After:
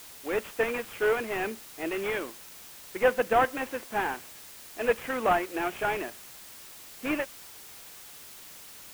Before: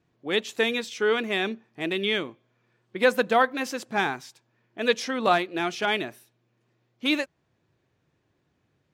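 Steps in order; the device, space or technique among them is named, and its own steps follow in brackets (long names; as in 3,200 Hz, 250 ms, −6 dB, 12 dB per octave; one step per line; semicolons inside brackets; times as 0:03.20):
army field radio (band-pass filter 310–3,000 Hz; variable-slope delta modulation 16 kbit/s; white noise bed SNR 16 dB)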